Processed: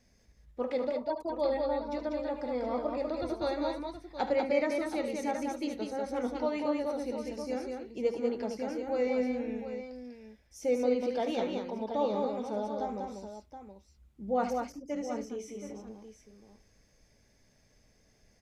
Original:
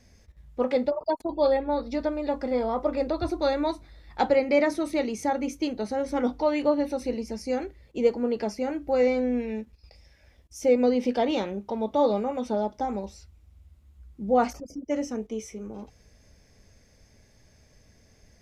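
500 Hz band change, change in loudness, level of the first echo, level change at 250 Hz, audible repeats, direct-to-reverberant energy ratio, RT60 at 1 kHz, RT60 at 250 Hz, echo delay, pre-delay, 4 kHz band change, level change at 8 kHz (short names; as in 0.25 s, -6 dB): -6.0 dB, -6.5 dB, -11.0 dB, -6.5 dB, 3, none, none, none, 75 ms, none, -6.0 dB, -6.0 dB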